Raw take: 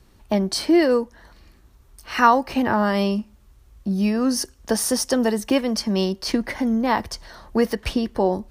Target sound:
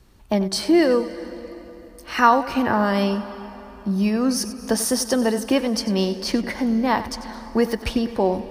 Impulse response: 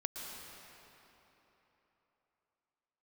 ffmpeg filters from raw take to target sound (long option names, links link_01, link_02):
-filter_complex "[0:a]asplit=2[link_01][link_02];[1:a]atrim=start_sample=2205,adelay=94[link_03];[link_02][link_03]afir=irnorm=-1:irlink=0,volume=-12dB[link_04];[link_01][link_04]amix=inputs=2:normalize=0"